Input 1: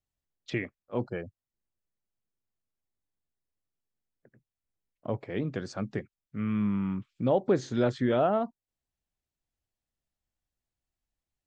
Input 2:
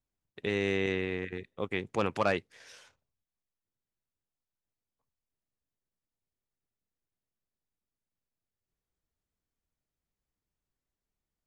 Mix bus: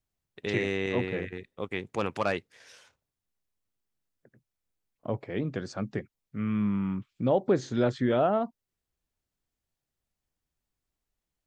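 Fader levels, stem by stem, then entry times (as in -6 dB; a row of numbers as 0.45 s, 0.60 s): +0.5 dB, -0.5 dB; 0.00 s, 0.00 s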